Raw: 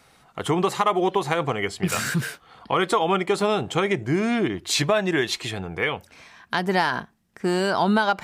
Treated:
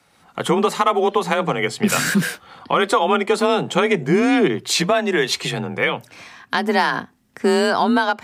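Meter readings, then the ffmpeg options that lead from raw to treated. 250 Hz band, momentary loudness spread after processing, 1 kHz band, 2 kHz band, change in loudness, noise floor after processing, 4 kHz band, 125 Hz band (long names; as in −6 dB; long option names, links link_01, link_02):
+5.0 dB, 7 LU, +4.0 dB, +4.5 dB, +4.5 dB, −58 dBFS, +4.5 dB, +1.0 dB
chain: -af "afreqshift=32,dynaudnorm=framelen=100:gausssize=5:maxgain=11.5dB,volume=-3dB"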